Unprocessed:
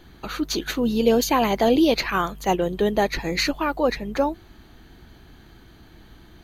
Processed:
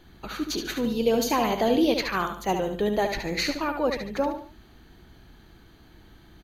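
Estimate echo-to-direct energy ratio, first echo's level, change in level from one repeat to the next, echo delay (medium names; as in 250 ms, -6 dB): -6.5 dB, -7.0 dB, -8.5 dB, 72 ms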